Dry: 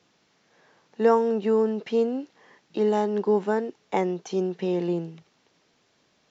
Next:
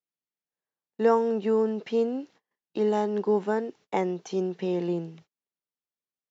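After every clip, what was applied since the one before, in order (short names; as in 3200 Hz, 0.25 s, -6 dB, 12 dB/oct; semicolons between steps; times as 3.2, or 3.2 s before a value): gate -49 dBFS, range -35 dB; gain -2 dB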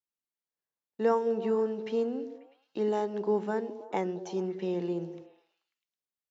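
delay with a stepping band-pass 0.108 s, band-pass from 260 Hz, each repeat 0.7 oct, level -8 dB; gain -4.5 dB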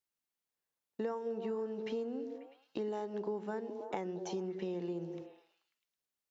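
compressor 5:1, threshold -38 dBFS, peak gain reduction 16 dB; gain +2 dB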